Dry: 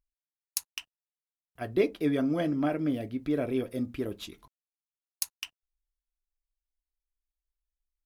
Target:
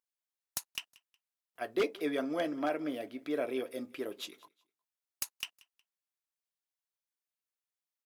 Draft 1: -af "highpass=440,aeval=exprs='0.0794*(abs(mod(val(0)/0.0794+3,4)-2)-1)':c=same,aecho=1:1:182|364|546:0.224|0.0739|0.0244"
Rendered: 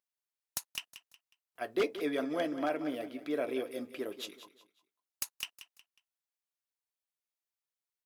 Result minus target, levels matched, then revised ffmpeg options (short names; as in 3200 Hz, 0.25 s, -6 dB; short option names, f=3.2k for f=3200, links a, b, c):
echo-to-direct +11 dB
-af "highpass=440,aeval=exprs='0.0794*(abs(mod(val(0)/0.0794+3,4)-2)-1)':c=same,aecho=1:1:182|364:0.0631|0.0208"